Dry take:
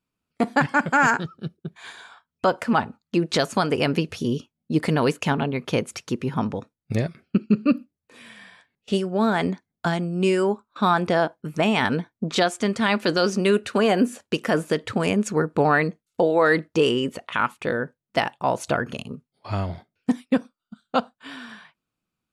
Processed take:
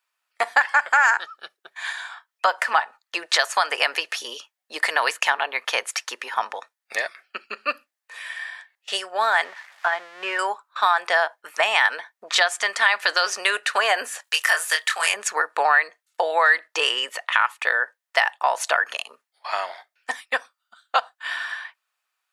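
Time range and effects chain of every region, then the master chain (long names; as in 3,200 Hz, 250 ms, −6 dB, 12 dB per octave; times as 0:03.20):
0:09.44–0:10.39: spike at every zero crossing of −19 dBFS + low-pass filter 2,000 Hz + expander for the loud parts, over −36 dBFS
0:14.24–0:15.14: high-pass filter 1,400 Hz 6 dB per octave + high-shelf EQ 6,600 Hz +11 dB + double-tracking delay 25 ms −4.5 dB
whole clip: high-pass filter 750 Hz 24 dB per octave; parametric band 1,800 Hz +8.5 dB 0.24 octaves; downward compressor 3 to 1, threshold −24 dBFS; level +8 dB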